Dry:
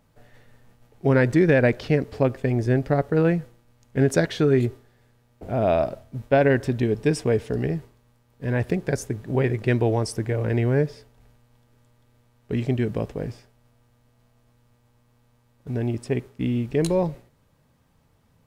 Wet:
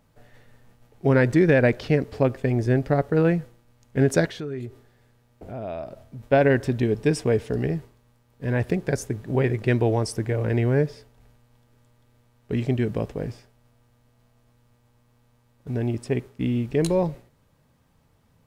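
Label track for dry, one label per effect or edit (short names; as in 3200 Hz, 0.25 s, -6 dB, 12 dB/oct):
4.260000	6.230000	compressor 2:1, threshold -39 dBFS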